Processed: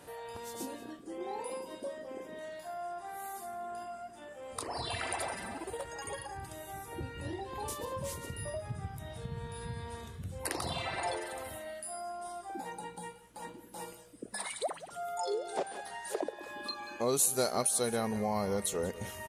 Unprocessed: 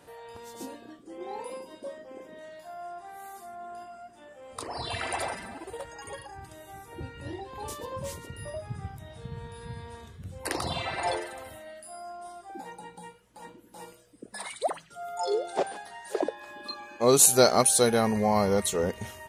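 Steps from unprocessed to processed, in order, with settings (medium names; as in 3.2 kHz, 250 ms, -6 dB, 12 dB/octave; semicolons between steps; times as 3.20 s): peaking EQ 11 kHz +5 dB 0.7 oct; delay 181 ms -18 dB; compression 2:1, threshold -39 dBFS, peak gain reduction 15.5 dB; trim +1.5 dB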